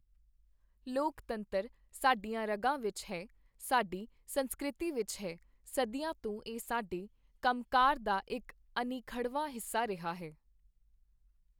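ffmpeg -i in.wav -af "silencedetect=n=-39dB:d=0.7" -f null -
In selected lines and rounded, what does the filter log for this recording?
silence_start: 0.00
silence_end: 0.87 | silence_duration: 0.87
silence_start: 10.28
silence_end: 11.59 | silence_duration: 1.31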